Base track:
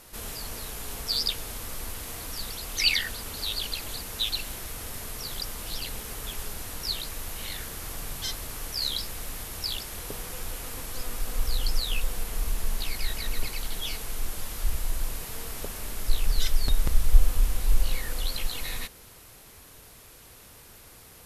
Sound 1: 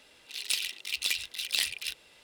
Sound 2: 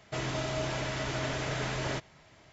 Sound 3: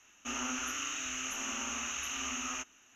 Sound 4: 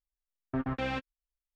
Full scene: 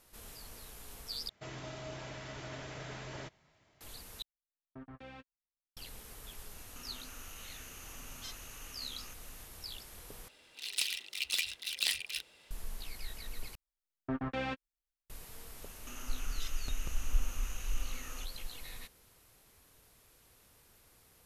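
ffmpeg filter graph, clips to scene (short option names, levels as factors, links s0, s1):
-filter_complex "[4:a]asplit=2[s0][s1];[3:a]asplit=2[s2][s3];[0:a]volume=0.211[s4];[s2]acompressor=threshold=0.00251:ratio=6:attack=3.2:release=140:knee=1:detection=peak[s5];[s1]equalizer=f=75:t=o:w=1.5:g=-4[s6];[s3]acompressor=threshold=0.00501:ratio=6:attack=3.2:release=140:knee=1:detection=peak[s7];[s4]asplit=5[s8][s9][s10][s11][s12];[s8]atrim=end=1.294[s13];[2:a]atrim=end=2.52,asetpts=PTS-STARTPTS,volume=0.266[s14];[s9]atrim=start=3.806:end=4.224[s15];[s0]atrim=end=1.55,asetpts=PTS-STARTPTS,volume=0.133[s16];[s10]atrim=start=5.766:end=10.284[s17];[1:a]atrim=end=2.23,asetpts=PTS-STARTPTS,volume=0.668[s18];[s11]atrim=start=12.506:end=13.554[s19];[s6]atrim=end=1.55,asetpts=PTS-STARTPTS,volume=0.708[s20];[s12]atrim=start=15.096[s21];[s5]atrim=end=2.95,asetpts=PTS-STARTPTS,afade=t=in:d=0.004:c=hsin,afade=t=out:st=2.946:d=0.004:c=hsin,adelay=6510[s22];[s7]atrim=end=2.95,asetpts=PTS-STARTPTS,volume=0.891,afade=t=in:d=0.004:c=hsin,afade=t=out:st=2.946:d=0.004:c=hsin,adelay=15620[s23];[s13][s14]acrossfade=d=0.004:c1=hsin:c2=hsin[s24];[s24][s15]acrossfade=d=0.004:c1=hsin:c2=hsin[s25];[s25][s16]acrossfade=d=0.004:c1=hsin:c2=hsin[s26];[s26][s17]acrossfade=d=0.004:c1=hsin:c2=hsin[s27];[s27][s18]acrossfade=d=0.004:c1=hsin:c2=hsin[s28];[s28][s19]acrossfade=d=0.004:c1=hsin:c2=hsin[s29];[s29][s20]acrossfade=d=0.004:c1=hsin:c2=hsin[s30];[s30][s21]acrossfade=d=0.004:c1=hsin:c2=hsin[s31];[s31][s22][s23]amix=inputs=3:normalize=0"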